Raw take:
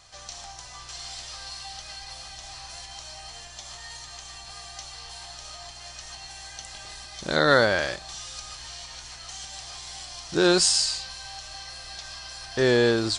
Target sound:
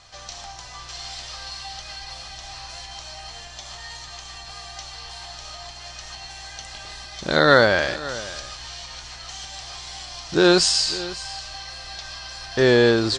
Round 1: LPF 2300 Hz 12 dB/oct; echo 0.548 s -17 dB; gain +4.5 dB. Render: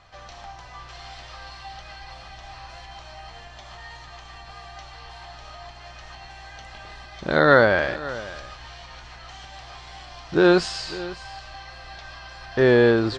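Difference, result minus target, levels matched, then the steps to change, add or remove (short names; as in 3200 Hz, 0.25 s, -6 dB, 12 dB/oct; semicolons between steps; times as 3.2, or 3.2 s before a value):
8000 Hz band -17.0 dB
change: LPF 5900 Hz 12 dB/oct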